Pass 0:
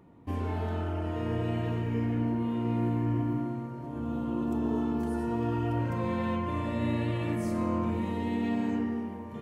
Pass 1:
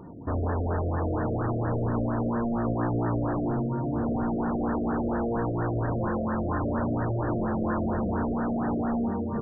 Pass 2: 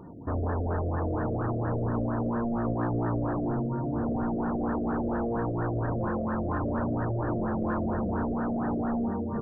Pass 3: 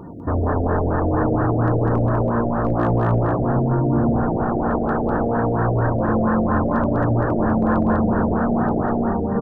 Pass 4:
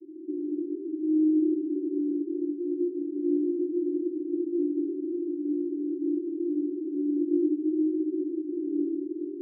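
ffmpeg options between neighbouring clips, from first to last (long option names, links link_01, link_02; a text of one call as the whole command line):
ffmpeg -i in.wav -filter_complex "[0:a]asplit=2[link_01][link_02];[link_02]aeval=exprs='0.126*sin(PI/2*6.31*val(0)/0.126)':channel_layout=same,volume=-9.5dB[link_03];[link_01][link_03]amix=inputs=2:normalize=0,afftfilt=real='re*lt(b*sr/1024,690*pow(1900/690,0.5+0.5*sin(2*PI*4.3*pts/sr)))':imag='im*lt(b*sr/1024,690*pow(1900/690,0.5+0.5*sin(2*PI*4.3*pts/sr)))':win_size=1024:overlap=0.75" out.wav
ffmpeg -i in.wav -af "aeval=exprs='0.168*(cos(1*acos(clip(val(0)/0.168,-1,1)))-cos(1*PI/2))+0.00168*(cos(6*acos(clip(val(0)/0.168,-1,1)))-cos(6*PI/2))':channel_layout=same,volume=-1.5dB" out.wav
ffmpeg -i in.wav -af "asoftclip=type=hard:threshold=-19dB,aecho=1:1:199:0.708,volume=9dB" out.wav
ffmpeg -i in.wav -af "flanger=delay=19:depth=5.1:speed=0.25,asuperpass=centerf=330:order=12:qfactor=3.6,volume=3dB" out.wav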